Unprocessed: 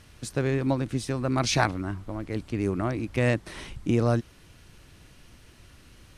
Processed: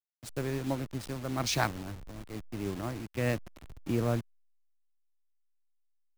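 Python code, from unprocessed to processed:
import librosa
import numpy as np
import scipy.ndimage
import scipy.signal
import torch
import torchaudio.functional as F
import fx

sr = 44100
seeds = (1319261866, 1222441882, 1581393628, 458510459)

y = fx.delta_hold(x, sr, step_db=-30.5)
y = fx.band_widen(y, sr, depth_pct=40)
y = F.gain(torch.from_numpy(y), -7.0).numpy()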